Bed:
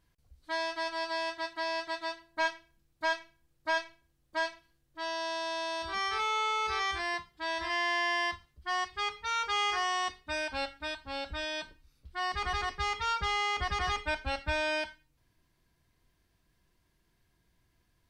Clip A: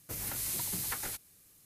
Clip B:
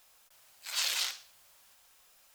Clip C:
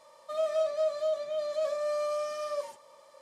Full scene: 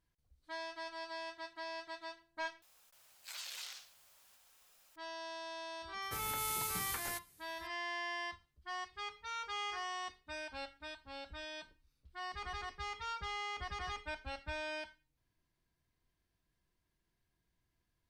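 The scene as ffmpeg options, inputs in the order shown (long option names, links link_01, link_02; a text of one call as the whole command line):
ffmpeg -i bed.wav -i cue0.wav -i cue1.wav -filter_complex "[0:a]volume=-10.5dB[link_01];[2:a]acompressor=threshold=-38dB:ratio=6:attack=3.2:release=140:knee=1:detection=peak[link_02];[link_01]asplit=2[link_03][link_04];[link_03]atrim=end=2.624[link_05];[link_02]atrim=end=2.34,asetpts=PTS-STARTPTS,volume=-4dB[link_06];[link_04]atrim=start=4.956[link_07];[1:a]atrim=end=1.65,asetpts=PTS-STARTPTS,volume=-4.5dB,afade=type=in:duration=0.004:curve=hsin,afade=type=out:start_time=1.646:duration=0.004:curve=hsin,adelay=6020[link_08];[link_05][link_06]acrossfade=duration=0.004:curve1=hsin:curve2=hsin[link_09];[link_09][link_07]acrossfade=duration=0.004:curve1=hsin:curve2=hsin[link_10];[link_10][link_08]amix=inputs=2:normalize=0" out.wav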